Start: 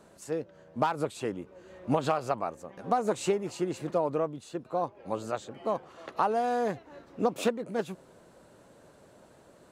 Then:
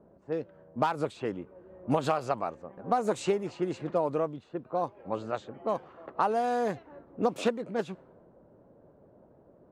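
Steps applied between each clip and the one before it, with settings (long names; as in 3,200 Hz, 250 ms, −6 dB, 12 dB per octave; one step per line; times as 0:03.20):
low-pass that shuts in the quiet parts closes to 610 Hz, open at −24.5 dBFS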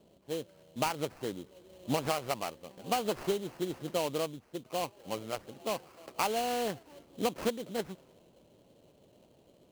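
sample-rate reduction 3,600 Hz, jitter 20%
level −4 dB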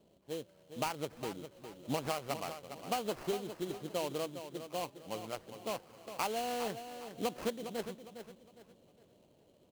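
repeating echo 408 ms, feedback 33%, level −10 dB
level −4.5 dB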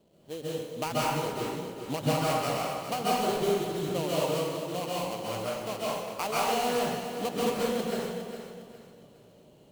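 dense smooth reverb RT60 1.3 s, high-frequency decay 0.75×, pre-delay 120 ms, DRR −7 dB
level +1.5 dB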